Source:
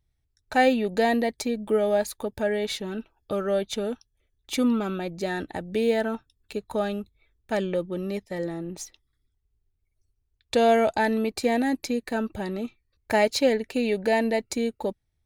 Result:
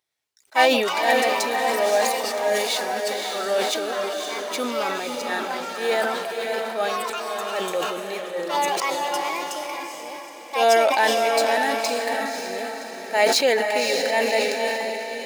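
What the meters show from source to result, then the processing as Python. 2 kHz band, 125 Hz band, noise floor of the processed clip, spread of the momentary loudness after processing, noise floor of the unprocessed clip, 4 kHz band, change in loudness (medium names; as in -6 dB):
+8.0 dB, under -10 dB, -40 dBFS, 11 LU, -75 dBFS, +10.0 dB, +3.5 dB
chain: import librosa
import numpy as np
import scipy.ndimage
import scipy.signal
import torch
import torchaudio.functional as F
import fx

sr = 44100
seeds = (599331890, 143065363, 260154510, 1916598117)

p1 = scipy.ndimage.median_filter(x, 3, mode='constant')
p2 = scipy.signal.sosfilt(scipy.signal.butter(2, 600.0, 'highpass', fs=sr, output='sos'), p1)
p3 = fx.high_shelf(p2, sr, hz=5300.0, db=4.0)
p4 = fx.auto_swell(p3, sr, attack_ms=109.0)
p5 = p4 + fx.echo_diffused(p4, sr, ms=557, feedback_pct=48, wet_db=-3.5, dry=0)
p6 = fx.echo_pitch(p5, sr, ms=110, semitones=4, count=3, db_per_echo=-6.0)
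p7 = fx.sustainer(p6, sr, db_per_s=38.0)
y = p7 * librosa.db_to_amplitude(5.0)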